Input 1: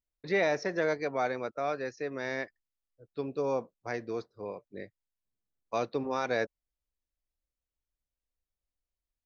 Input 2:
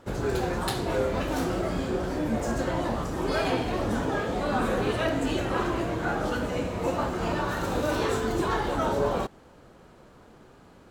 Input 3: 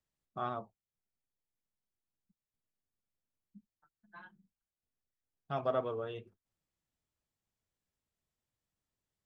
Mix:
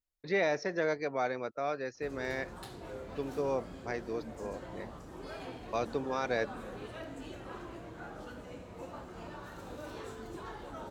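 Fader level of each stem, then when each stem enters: -2.0 dB, -17.5 dB, mute; 0.00 s, 1.95 s, mute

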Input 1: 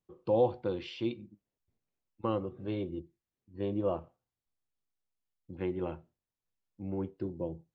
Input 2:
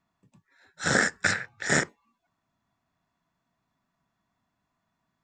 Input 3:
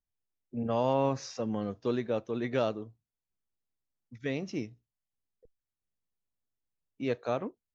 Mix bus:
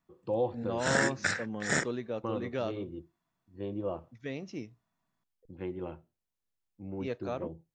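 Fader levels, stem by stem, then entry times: -3.5 dB, -5.5 dB, -5.0 dB; 0.00 s, 0.00 s, 0.00 s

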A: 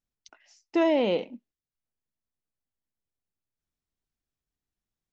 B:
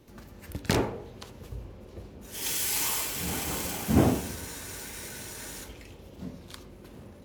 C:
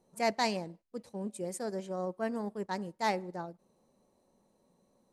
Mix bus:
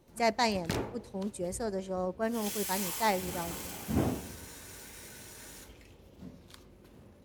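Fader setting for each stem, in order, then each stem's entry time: mute, -8.0 dB, +2.0 dB; mute, 0.00 s, 0.00 s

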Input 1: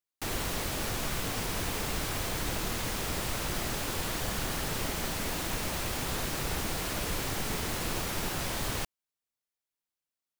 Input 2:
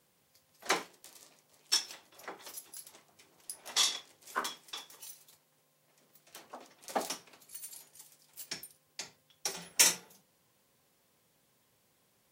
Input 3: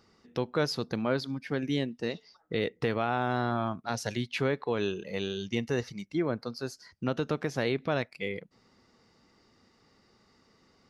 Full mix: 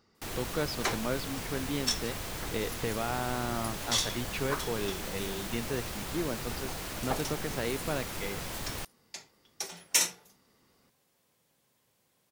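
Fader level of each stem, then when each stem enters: -5.0 dB, -1.0 dB, -4.5 dB; 0.00 s, 0.15 s, 0.00 s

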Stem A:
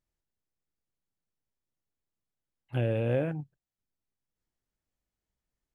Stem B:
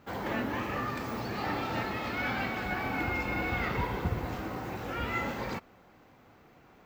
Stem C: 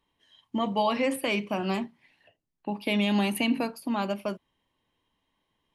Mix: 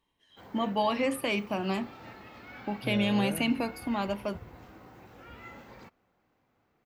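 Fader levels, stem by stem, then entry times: -8.0 dB, -14.5 dB, -2.0 dB; 0.10 s, 0.30 s, 0.00 s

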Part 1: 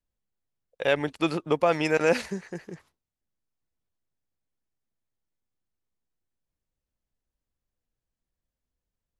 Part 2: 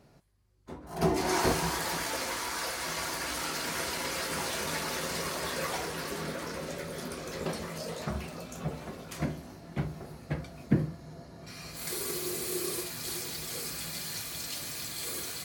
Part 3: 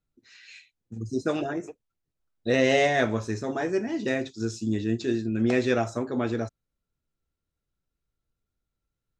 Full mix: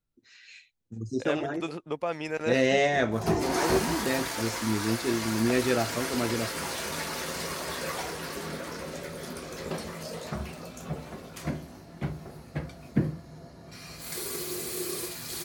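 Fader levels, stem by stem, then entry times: -8.5 dB, 0.0 dB, -2.0 dB; 0.40 s, 2.25 s, 0.00 s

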